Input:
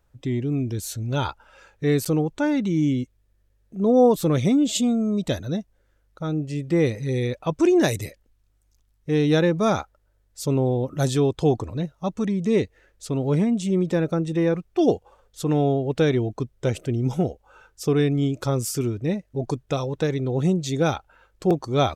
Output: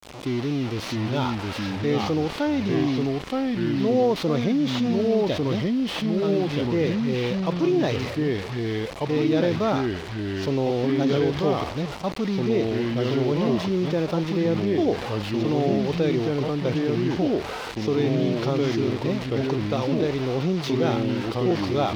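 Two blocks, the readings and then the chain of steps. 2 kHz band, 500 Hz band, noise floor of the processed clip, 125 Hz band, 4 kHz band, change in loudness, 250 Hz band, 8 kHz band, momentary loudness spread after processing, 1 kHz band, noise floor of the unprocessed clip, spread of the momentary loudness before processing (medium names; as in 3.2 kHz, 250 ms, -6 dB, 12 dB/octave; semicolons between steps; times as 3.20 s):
+1.5 dB, 0.0 dB, -33 dBFS, -2.0 dB, +3.0 dB, -1.0 dB, 0.0 dB, -9.0 dB, 6 LU, +0.5 dB, -65 dBFS, 10 LU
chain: one-bit delta coder 32 kbps, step -29 dBFS; high-pass 230 Hz 6 dB/octave; expander -32 dBFS; peaking EQ 1.6 kHz -5.5 dB 0.42 oct; ever faster or slower copies 628 ms, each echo -2 st, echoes 2; distance through air 110 m; crossover distortion -47.5 dBFS; level flattener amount 50%; trim -3.5 dB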